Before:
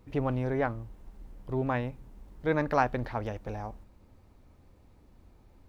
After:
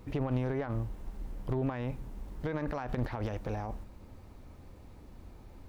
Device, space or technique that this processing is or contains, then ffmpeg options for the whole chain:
de-esser from a sidechain: -filter_complex "[0:a]asplit=2[link_01][link_02];[link_02]highpass=frequency=4100:poles=1,apad=whole_len=250671[link_03];[link_01][link_03]sidechaincompress=threshold=-58dB:ratio=4:attack=2.2:release=27,volume=7dB"

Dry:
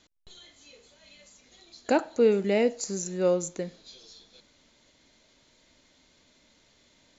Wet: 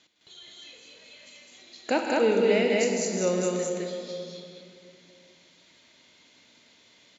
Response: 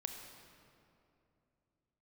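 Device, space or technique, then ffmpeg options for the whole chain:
stadium PA: -filter_complex "[0:a]highpass=130,equalizer=frequency=2800:width_type=o:width=1.5:gain=6.5,aecho=1:1:157.4|209.9:0.355|0.891[link_01];[1:a]atrim=start_sample=2205[link_02];[link_01][link_02]afir=irnorm=-1:irlink=0"

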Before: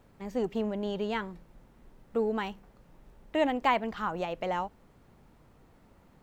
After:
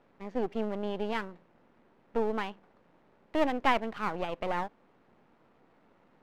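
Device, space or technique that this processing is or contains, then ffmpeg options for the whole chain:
crystal radio: -af "highpass=230,lowpass=2800,aeval=exprs='if(lt(val(0),0),0.251*val(0),val(0))':channel_layout=same,volume=2.5dB"

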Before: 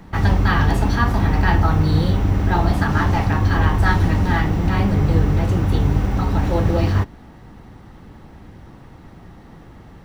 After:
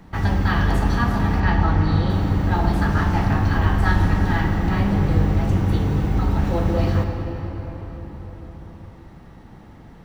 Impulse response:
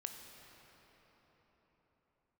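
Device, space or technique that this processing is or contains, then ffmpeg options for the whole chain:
cathedral: -filter_complex "[1:a]atrim=start_sample=2205[link_01];[0:a][link_01]afir=irnorm=-1:irlink=0,asettb=1/sr,asplit=3[link_02][link_03][link_04];[link_02]atrim=end=1.404[link_05];[link_03]atrim=start=1.4:end=2.1,asetpts=PTS-STARTPTS,afade=type=in:duration=0.004:curve=qsin,afade=type=out:start_time=0.696:duration=0.004:curve=qsin,lowpass=5500[link_06];[link_04]atrim=start=2.096[link_07];[link_05][link_06]acrossfade=duration=0.004:curve1=hsin:curve2=qsin[link_08];[link_08][link_07]acrossfade=duration=0.004:curve1=qsin:curve2=hsin"

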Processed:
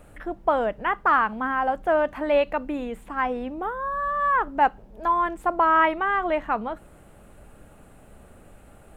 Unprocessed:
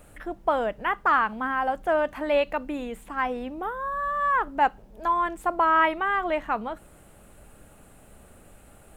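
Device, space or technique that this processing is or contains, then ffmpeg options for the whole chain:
behind a face mask: -af "highshelf=frequency=3300:gain=-8,volume=2.5dB"

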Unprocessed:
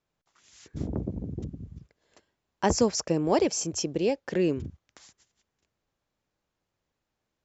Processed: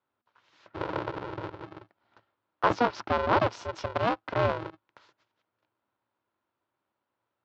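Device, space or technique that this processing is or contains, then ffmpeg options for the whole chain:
ring modulator pedal into a guitar cabinet: -filter_complex "[0:a]aeval=exprs='val(0)*sgn(sin(2*PI*240*n/s))':channel_layout=same,highpass=97,equalizer=frequency=110:width_type=q:width=4:gain=8,equalizer=frequency=160:width_type=q:width=4:gain=-8,equalizer=frequency=330:width_type=q:width=4:gain=4,equalizer=frequency=570:width_type=q:width=4:gain=5,equalizer=frequency=970:width_type=q:width=4:gain=10,equalizer=frequency=1400:width_type=q:width=4:gain=8,lowpass=frequency=4000:width=0.5412,lowpass=frequency=4000:width=1.3066,asettb=1/sr,asplit=3[link_01][link_02][link_03];[link_01]atrim=end=2.744[link_04];[link_02]atrim=start=2.74:end=3.43,asetpts=PTS-STARTPTS,afade=type=in:duration=0.004:curve=qsin,afade=type=out:start_time=0.686:duration=0.004:curve=qsin,lowpass=frequency=6800:width=0.5412,lowpass=frequency=6800:width=1.3066[link_05];[link_03]atrim=start=3.426[link_06];[link_04][link_05]acrossfade=duration=0.004:curve1=hsin:curve2=qsin[link_07];[link_07][link_06]acrossfade=duration=0.004:curve1=qsin:curve2=hsin,volume=-4.5dB"

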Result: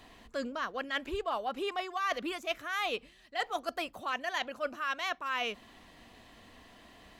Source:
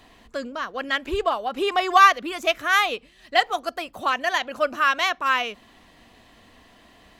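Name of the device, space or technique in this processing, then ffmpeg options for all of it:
compression on the reversed sound: -af "areverse,acompressor=threshold=-27dB:ratio=12,areverse,volume=-3dB"

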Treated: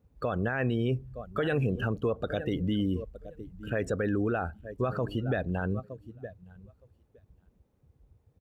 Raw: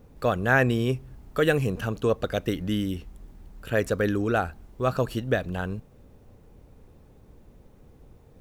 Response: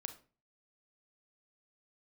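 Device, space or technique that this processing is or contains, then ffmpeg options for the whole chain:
stacked limiters: -af "highpass=50,aecho=1:1:915|1830:0.126|0.034,afftdn=noise_reduction=19:noise_floor=-36,alimiter=limit=-13dB:level=0:latency=1:release=485,alimiter=limit=-18.5dB:level=0:latency=1:release=64,alimiter=limit=-22dB:level=0:latency=1:release=15,volume=2dB"

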